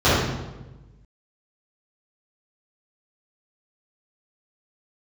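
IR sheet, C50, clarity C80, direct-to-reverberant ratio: -2.5 dB, 1.5 dB, -14.5 dB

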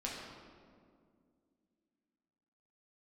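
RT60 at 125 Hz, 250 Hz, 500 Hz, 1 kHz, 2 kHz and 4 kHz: 2.6 s, 3.3 s, 2.5 s, 1.9 s, 1.4 s, 1.1 s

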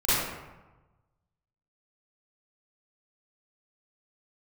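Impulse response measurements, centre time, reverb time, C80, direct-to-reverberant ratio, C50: 104 ms, 1.1 s, 0.0 dB, -14.5 dB, -4.5 dB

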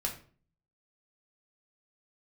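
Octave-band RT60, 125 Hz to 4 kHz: 0.75 s, 0.60 s, 0.45 s, 0.40 s, 0.35 s, 0.30 s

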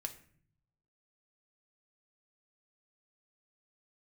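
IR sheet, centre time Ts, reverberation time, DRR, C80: 8 ms, 0.55 s, 4.5 dB, 17.0 dB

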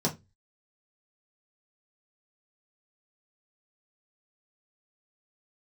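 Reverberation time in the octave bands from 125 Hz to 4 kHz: 0.40 s, 0.30 s, 0.25 s, 0.20 s, 0.20 s, 0.20 s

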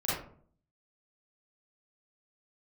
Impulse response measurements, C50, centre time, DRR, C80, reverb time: -1.5 dB, 61 ms, -9.5 dB, 5.5 dB, 0.55 s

